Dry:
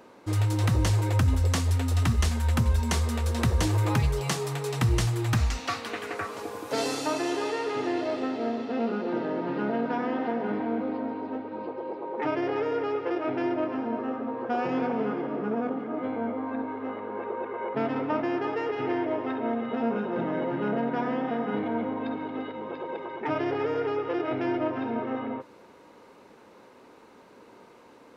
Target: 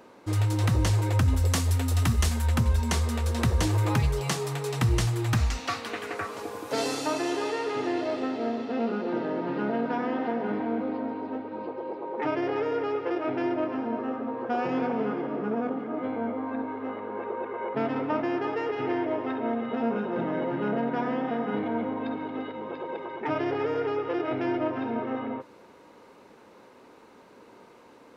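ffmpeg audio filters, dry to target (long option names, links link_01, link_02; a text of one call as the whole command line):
ffmpeg -i in.wav -filter_complex "[0:a]asettb=1/sr,asplit=3[link_01][link_02][link_03];[link_01]atrim=end=1.374[link_04];[link_02]atrim=start=1.37:end=2.46,asetpts=PTS-STARTPTS,afade=type=in:duration=0.004:curve=qsin,afade=type=out:start_time=1.086:duration=0.004:curve=qsin,highshelf=frequency=8900:gain=8.5[link_05];[link_03]atrim=start=2.456[link_06];[link_04][link_05]acrossfade=duration=0.004:curve1=hsin:curve2=qsin[link_07];[link_07][link_06]acrossfade=duration=0.004:curve1=qsin:curve2=hsin" out.wav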